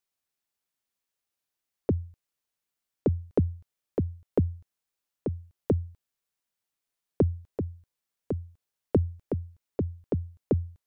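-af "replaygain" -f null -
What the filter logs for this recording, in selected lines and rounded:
track_gain = +12.2 dB
track_peak = 0.155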